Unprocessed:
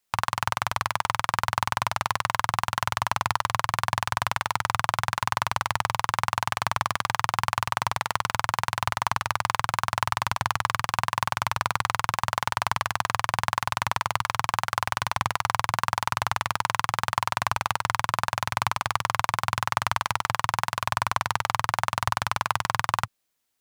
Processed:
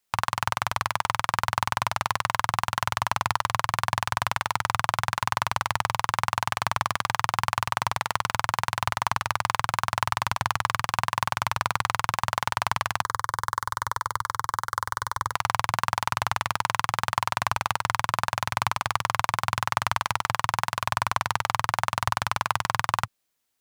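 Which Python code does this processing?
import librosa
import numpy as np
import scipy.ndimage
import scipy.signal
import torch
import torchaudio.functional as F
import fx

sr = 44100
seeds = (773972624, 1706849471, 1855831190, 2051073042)

y = fx.fixed_phaser(x, sr, hz=700.0, stages=6, at=(13.02, 15.33))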